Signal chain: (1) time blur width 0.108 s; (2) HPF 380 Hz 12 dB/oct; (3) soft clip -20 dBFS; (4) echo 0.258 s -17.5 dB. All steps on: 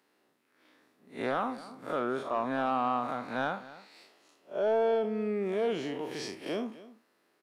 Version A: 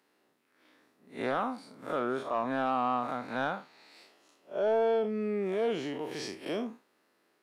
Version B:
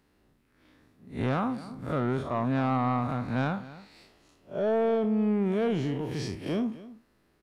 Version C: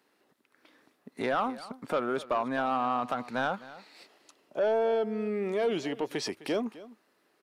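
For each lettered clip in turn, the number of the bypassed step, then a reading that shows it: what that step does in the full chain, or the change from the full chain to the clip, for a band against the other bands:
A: 4, momentary loudness spread change -3 LU; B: 2, 125 Hz band +16.5 dB; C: 1, 4 kHz band +2.0 dB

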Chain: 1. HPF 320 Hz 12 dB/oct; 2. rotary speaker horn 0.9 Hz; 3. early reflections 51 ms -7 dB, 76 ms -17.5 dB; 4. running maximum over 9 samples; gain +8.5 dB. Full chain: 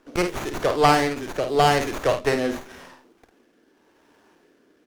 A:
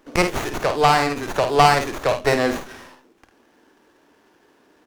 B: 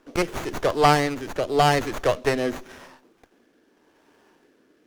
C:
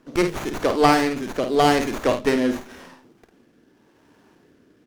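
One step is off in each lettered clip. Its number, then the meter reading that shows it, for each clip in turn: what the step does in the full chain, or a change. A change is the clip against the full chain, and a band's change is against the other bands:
2, 250 Hz band -2.0 dB; 3, 125 Hz band +2.0 dB; 1, 250 Hz band +5.5 dB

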